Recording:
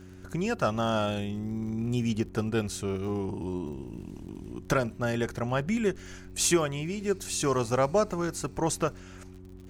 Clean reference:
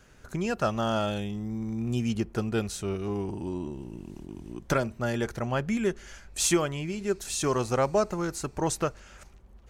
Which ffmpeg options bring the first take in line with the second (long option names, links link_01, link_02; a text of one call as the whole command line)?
ffmpeg -i in.wav -af "adeclick=threshold=4,bandreject=frequency=92.5:width_type=h:width=4,bandreject=frequency=185:width_type=h:width=4,bandreject=frequency=277.5:width_type=h:width=4,bandreject=frequency=370:width_type=h:width=4" out.wav